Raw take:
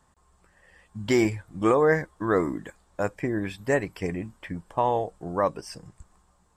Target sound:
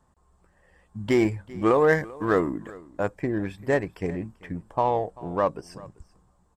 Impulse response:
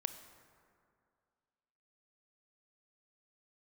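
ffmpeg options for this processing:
-filter_complex "[0:a]asettb=1/sr,asplit=3[a][b][c];[a]atrim=end=1.744[d];[b]atrim=start=1.74:end=2.4,asetpts=PTS-STARTPTS,afade=t=in:d=0.004:c=qsin,afade=t=out:st=0.656:d=0.004:c=qsin,highshelf=f=3.6k:g=10.5[e];[c]atrim=start=2.396[f];[d][e]acrossfade=d=0.004:c1=hsin:c2=qsin[g];[g][f]acrossfade=d=0.004:c1=qsin:c2=hsin,asplit=2[h][i];[i]adynamicsmooth=sensitivity=2.5:basefreq=1.5k,volume=2.5dB[j];[h][j]amix=inputs=2:normalize=0,aecho=1:1:390:0.0891,volume=-6.5dB"

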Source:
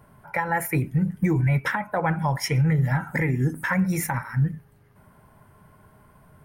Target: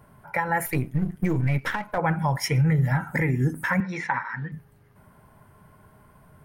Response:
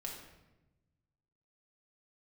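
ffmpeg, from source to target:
-filter_complex "[0:a]asettb=1/sr,asplit=3[a][b][c];[a]atrim=end=0.664[d];[b]atrim=start=0.66:end=1.98,asetpts=PTS-STARTPTS,afade=t=in:d=0.004:c=qsin,afade=t=out:st=1.316:d=0.004:c=qsin,aeval=exprs='if(lt(val(0),0),0.447*val(0),val(0))':c=same[e];[c]atrim=start=1.976[f];[d][e]acrossfade=d=0.004:c1=hsin:c2=qsin[g];[g][f]acrossfade=d=0.004:c1=qsin:c2=hsin,asettb=1/sr,asplit=3[h][i][j];[h]atrim=end=3.804[k];[i]atrim=start=3.8:end=4.52,asetpts=PTS-STARTPTS,afade=t=in:d=0.004:c=qsin,afade=t=out:st=0.716:d=0.004:c=qsin,highpass=280,equalizer=f=320:t=q:w=4:g=-4,equalizer=f=630:t=q:w=4:g=-6,equalizer=f=970:t=q:w=4:g=6,equalizer=f=1.8k:t=q:w=4:g=7,equalizer=f=3.5k:t=q:w=4:g=5,lowpass=f=4.6k:w=0.5412,lowpass=f=4.6k:w=1.3066[l];[j]atrim=start=4.516[m];[k][l]acrossfade=d=0.004:c1=hsin:c2=qsin[n];[n][m]acrossfade=d=0.004:c1=qsin:c2=hsin"

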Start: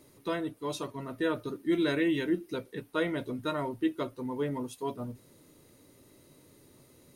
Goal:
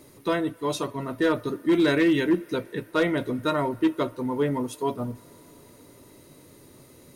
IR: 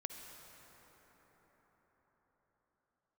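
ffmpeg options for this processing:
-filter_complex "[0:a]volume=22.5dB,asoftclip=hard,volume=-22.5dB,asplit=2[a][b];[b]aemphasis=mode=production:type=riaa[c];[1:a]atrim=start_sample=2205,lowpass=f=2.8k:w=0.5412,lowpass=f=2.8k:w=1.3066[d];[c][d]afir=irnorm=-1:irlink=0,volume=-15.5dB[e];[a][e]amix=inputs=2:normalize=0,volume=7dB"

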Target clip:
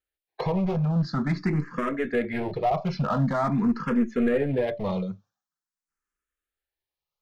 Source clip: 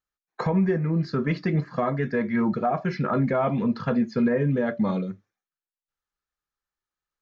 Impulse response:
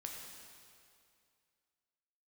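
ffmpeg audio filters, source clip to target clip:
-filter_complex "[0:a]acontrast=51,aeval=exprs='clip(val(0),-1,0.133)':c=same,asplit=2[a][b];[b]afreqshift=0.46[c];[a][c]amix=inputs=2:normalize=1,volume=-3dB"

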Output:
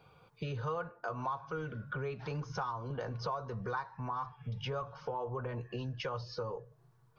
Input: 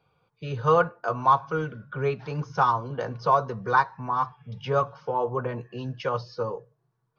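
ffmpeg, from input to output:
-filter_complex "[0:a]asubboost=boost=3.5:cutoff=92,asplit=2[a][b];[b]alimiter=level_in=6dB:limit=-24dB:level=0:latency=1:release=21,volume=-6dB,volume=2dB[c];[a][c]amix=inputs=2:normalize=0,acompressor=threshold=-38dB:ratio=4"

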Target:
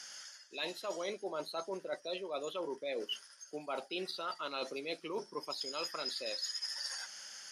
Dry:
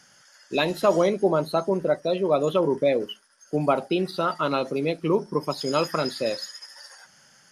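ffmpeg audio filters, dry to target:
-af "highpass=340,equalizer=f=4.7k:t=o:w=2.7:g=11.5,areverse,acompressor=threshold=-34dB:ratio=10,areverse,volume=-2.5dB"

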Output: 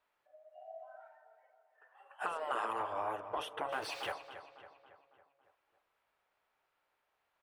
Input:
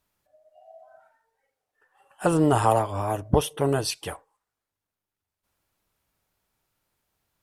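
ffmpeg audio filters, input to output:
-filter_complex "[0:a]asettb=1/sr,asplit=3[a][b][c];[a]atrim=end=3.724[d];[b]atrim=start=3.72:end=4.12,asetpts=PTS-STARTPTS,afade=t=in:d=0.004:c=qsin,afade=t=out:st=0.396:d=0.004:c=qsin,aeval=exprs='val(0)+0.5*0.0355*sgn(val(0))':c=same[e];[c]atrim=start=4.116[f];[d][e]acrossfade=d=0.004:c1=hsin:c2=qsin[g];[g][f]acrossfade=d=0.004:c1=qsin:c2=hsin,afftfilt=real='re*lt(hypot(re,im),0.316)':imag='im*lt(hypot(re,im),0.316)':win_size=1024:overlap=0.75,acompressor=threshold=-36dB:ratio=2.5,acrossover=split=440 3100:gain=0.0891 1 0.112[h][i][j];[h][i][j]amix=inputs=3:normalize=0,asplit=2[k][l];[l]adelay=277,lowpass=f=3.4k:p=1,volume=-11dB,asplit=2[m][n];[n]adelay=277,lowpass=f=3.4k:p=1,volume=0.55,asplit=2[o][p];[p]adelay=277,lowpass=f=3.4k:p=1,volume=0.55,asplit=2[q][r];[r]adelay=277,lowpass=f=3.4k:p=1,volume=0.55,asplit=2[s][t];[t]adelay=277,lowpass=f=3.4k:p=1,volume=0.55,asplit=2[u][v];[v]adelay=277,lowpass=f=3.4k:p=1,volume=0.55[w];[k][m][o][q][s][u][w]amix=inputs=7:normalize=0,volume=1.5dB"

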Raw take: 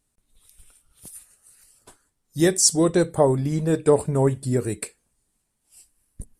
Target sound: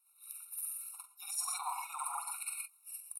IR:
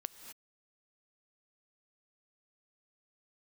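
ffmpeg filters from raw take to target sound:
-filter_complex "[0:a]aexciter=amount=14.9:drive=7.2:freq=10k,afreqshift=34,aemphasis=mode=reproduction:type=bsi,aecho=1:1:89:0.398,asplit=2[a][b];[1:a]atrim=start_sample=2205,adelay=114[c];[b][c]afir=irnorm=-1:irlink=0,volume=7.5dB[d];[a][d]amix=inputs=2:normalize=0,atempo=2,highpass=f=1.1k:w=0.5412,highpass=f=1.1k:w=1.3066,areverse,acompressor=threshold=-38dB:ratio=4,areverse,acrusher=bits=7:mode=log:mix=0:aa=0.000001,afftfilt=real='re*eq(mod(floor(b*sr/1024/730),2),1)':imag='im*eq(mod(floor(b*sr/1024/730),2),1)':win_size=1024:overlap=0.75,volume=2.5dB"

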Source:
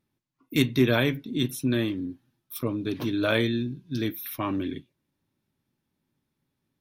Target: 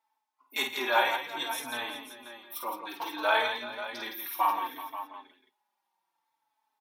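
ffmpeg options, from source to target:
-filter_complex "[0:a]highpass=f=870:t=q:w=8.6,aecho=1:1:50|106|166|380|535|710:0.531|0.126|0.398|0.168|0.251|0.1,asplit=2[a][b];[b]adelay=4,afreqshift=-0.62[c];[a][c]amix=inputs=2:normalize=1"

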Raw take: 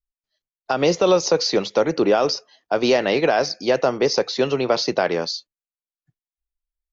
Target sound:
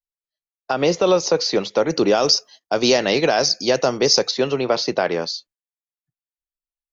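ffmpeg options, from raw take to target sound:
-filter_complex "[0:a]agate=range=-15dB:threshold=-49dB:ratio=16:detection=peak,asettb=1/sr,asplit=3[a][b][c];[a]atrim=end=1.904[d];[b]atrim=start=1.9:end=4.31,asetpts=PTS-STARTPTS,afade=t=in:d=0.004:c=qsin,afade=t=out:st=2.406:d=0.004:c=qsin,bass=f=250:g=3,treble=f=4k:g=13[e];[c]atrim=start=4.306[f];[d][e]acrossfade=d=0.004:c1=hsin:c2=qsin[g];[g][f]acrossfade=d=0.004:c1=qsin:c2=hsin"

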